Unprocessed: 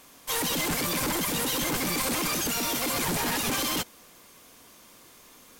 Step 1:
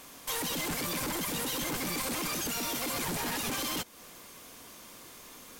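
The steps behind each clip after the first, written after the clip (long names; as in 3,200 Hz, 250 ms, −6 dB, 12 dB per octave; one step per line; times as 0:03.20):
downward compressor 2.5 to 1, threshold −39 dBFS, peak gain reduction 9 dB
level +3 dB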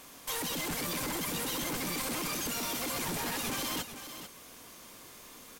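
single-tap delay 443 ms −10.5 dB
level −1.5 dB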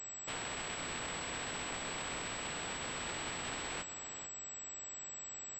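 compressing power law on the bin magnitudes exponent 0.2
switching amplifier with a slow clock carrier 7,800 Hz
level −3 dB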